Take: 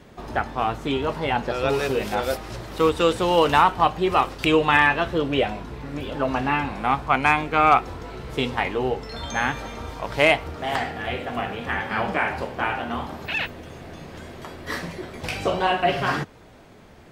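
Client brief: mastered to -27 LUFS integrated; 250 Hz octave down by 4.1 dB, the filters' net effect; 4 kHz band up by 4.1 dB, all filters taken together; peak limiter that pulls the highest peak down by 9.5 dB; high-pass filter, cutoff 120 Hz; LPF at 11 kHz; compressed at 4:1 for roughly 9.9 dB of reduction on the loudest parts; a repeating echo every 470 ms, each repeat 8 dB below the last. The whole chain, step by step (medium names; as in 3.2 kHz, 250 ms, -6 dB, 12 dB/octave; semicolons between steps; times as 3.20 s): high-pass 120 Hz; low-pass 11 kHz; peaking EQ 250 Hz -5.5 dB; peaking EQ 4 kHz +6 dB; compression 4:1, threshold -23 dBFS; peak limiter -16 dBFS; feedback delay 470 ms, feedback 40%, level -8 dB; trim +2 dB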